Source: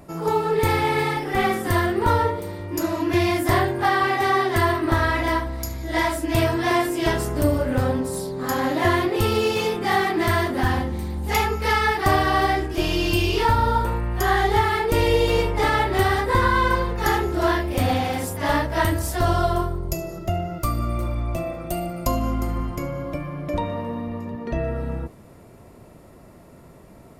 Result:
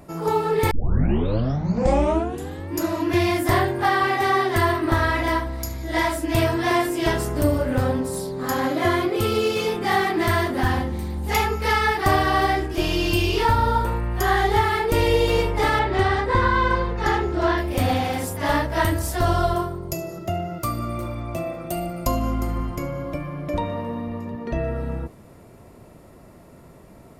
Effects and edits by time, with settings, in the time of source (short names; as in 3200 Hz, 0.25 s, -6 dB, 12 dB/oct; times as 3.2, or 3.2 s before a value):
0.71 tape start 2.07 s
8.67–9.68 notch comb 920 Hz
15.79–17.58 air absorption 85 m
19.54–21.76 HPF 98 Hz